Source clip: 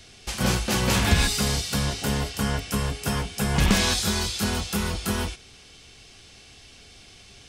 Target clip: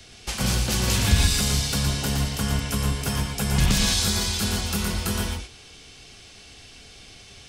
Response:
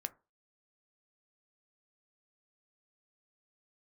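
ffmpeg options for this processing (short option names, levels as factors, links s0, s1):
-filter_complex "[0:a]acrossover=split=170|3000[s0][s1][s2];[s1]acompressor=threshold=0.0282:ratio=6[s3];[s0][s3][s2]amix=inputs=3:normalize=0,asplit=2[s4][s5];[1:a]atrim=start_sample=2205,adelay=116[s6];[s5][s6]afir=irnorm=-1:irlink=0,volume=0.708[s7];[s4][s7]amix=inputs=2:normalize=0,volume=1.19"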